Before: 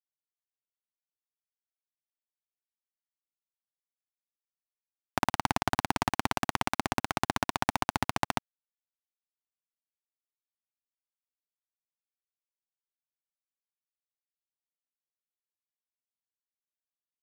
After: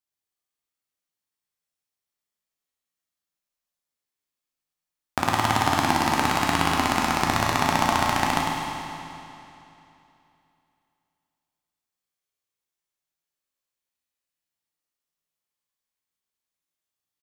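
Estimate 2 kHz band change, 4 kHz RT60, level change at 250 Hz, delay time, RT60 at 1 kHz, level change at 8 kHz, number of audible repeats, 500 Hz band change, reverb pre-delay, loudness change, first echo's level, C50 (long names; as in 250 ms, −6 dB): +8.0 dB, 2.7 s, +8.0 dB, 102 ms, 2.9 s, +8.5 dB, 1, +7.5 dB, 12 ms, +8.0 dB, −5.5 dB, −1.5 dB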